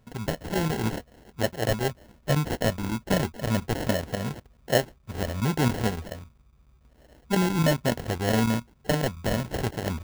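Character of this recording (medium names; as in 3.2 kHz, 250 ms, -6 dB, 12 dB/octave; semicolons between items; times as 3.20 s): chopped level 7.2 Hz, depth 65%, duty 90%; aliases and images of a low sample rate 1.2 kHz, jitter 0%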